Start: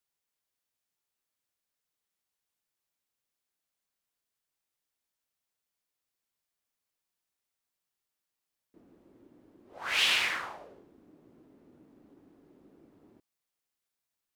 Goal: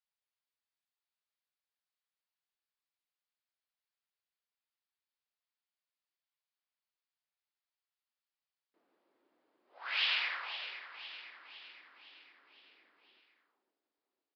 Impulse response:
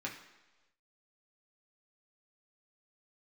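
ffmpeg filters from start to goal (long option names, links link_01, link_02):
-filter_complex "[0:a]highpass=750,asplit=2[link_01][link_02];[link_02]aecho=0:1:510|1020|1530|2040|2550|3060:0.282|0.155|0.0853|0.0469|0.0258|0.0142[link_03];[link_01][link_03]amix=inputs=2:normalize=0,aresample=11025,aresample=44100,volume=-5.5dB"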